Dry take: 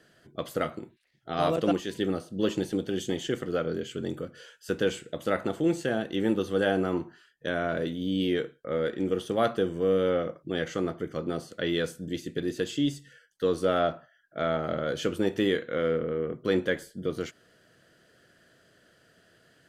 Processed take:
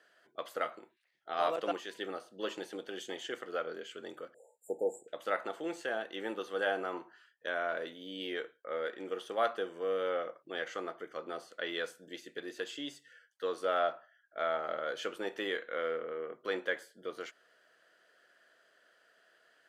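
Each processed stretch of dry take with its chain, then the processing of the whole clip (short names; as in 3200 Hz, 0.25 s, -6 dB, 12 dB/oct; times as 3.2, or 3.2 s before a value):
4.34–5.08 brick-wall FIR band-stop 910–6900 Hz + bell 1700 Hz +10 dB 2.9 oct
whole clip: HPF 740 Hz 12 dB/oct; high shelf 3000 Hz -10.5 dB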